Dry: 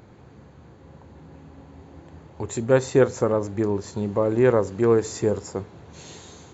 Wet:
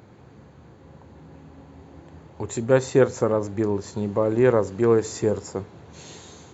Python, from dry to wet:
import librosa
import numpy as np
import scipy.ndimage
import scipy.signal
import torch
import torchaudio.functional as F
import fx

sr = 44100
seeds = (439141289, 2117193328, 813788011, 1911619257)

y = scipy.signal.sosfilt(scipy.signal.butter(2, 62.0, 'highpass', fs=sr, output='sos'), x)